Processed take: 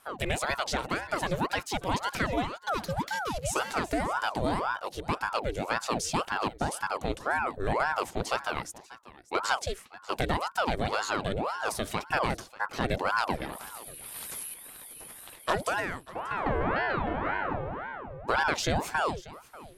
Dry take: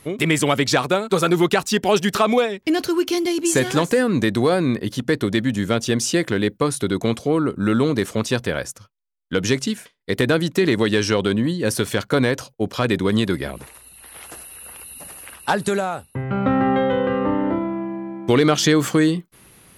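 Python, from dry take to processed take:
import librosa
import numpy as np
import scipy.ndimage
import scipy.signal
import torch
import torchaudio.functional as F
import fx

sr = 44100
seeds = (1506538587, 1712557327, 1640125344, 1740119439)

p1 = fx.high_shelf(x, sr, hz=2000.0, db=9.0, at=(13.52, 14.54))
p2 = fx.rider(p1, sr, range_db=3, speed_s=2.0)
p3 = p2 + fx.echo_single(p2, sr, ms=590, db=-18.5, dry=0)
p4 = fx.ring_lfo(p3, sr, carrier_hz=720.0, swing_pct=75, hz=1.9)
y = F.gain(torch.from_numpy(p4), -8.0).numpy()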